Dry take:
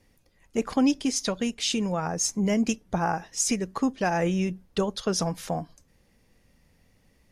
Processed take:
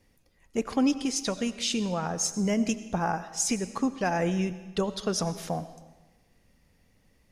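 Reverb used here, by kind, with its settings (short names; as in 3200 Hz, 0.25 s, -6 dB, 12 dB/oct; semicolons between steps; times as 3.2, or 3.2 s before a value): digital reverb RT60 1.2 s, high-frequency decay 0.95×, pre-delay 50 ms, DRR 13.5 dB; gain -2 dB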